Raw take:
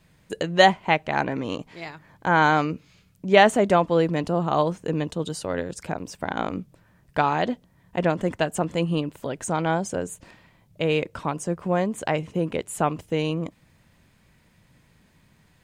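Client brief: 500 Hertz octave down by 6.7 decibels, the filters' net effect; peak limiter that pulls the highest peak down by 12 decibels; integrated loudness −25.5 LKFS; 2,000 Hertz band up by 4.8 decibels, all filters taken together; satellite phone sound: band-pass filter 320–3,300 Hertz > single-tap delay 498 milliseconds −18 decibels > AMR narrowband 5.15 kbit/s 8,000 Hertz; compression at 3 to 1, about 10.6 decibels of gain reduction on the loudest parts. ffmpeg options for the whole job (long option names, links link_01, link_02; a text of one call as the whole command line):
ffmpeg -i in.wav -af "equalizer=frequency=500:width_type=o:gain=-8,equalizer=frequency=2000:width_type=o:gain=7,acompressor=threshold=-24dB:ratio=3,alimiter=limit=-21.5dB:level=0:latency=1,highpass=320,lowpass=3300,aecho=1:1:498:0.126,volume=12.5dB" -ar 8000 -c:a libopencore_amrnb -b:a 5150 out.amr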